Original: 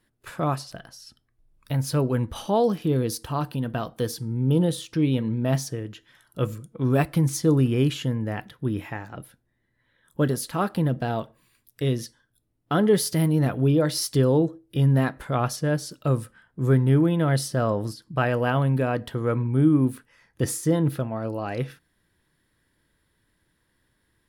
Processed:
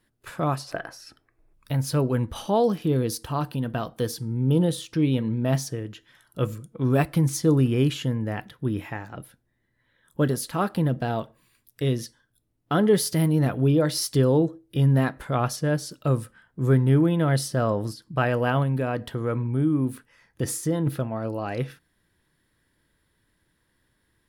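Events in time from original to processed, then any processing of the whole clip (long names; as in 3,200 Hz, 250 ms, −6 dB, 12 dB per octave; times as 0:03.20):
0:00.68–0:01.54: gain on a spectral selection 270–2,700 Hz +11 dB
0:18.63–0:20.87: downward compressor 1.5 to 1, threshold −25 dBFS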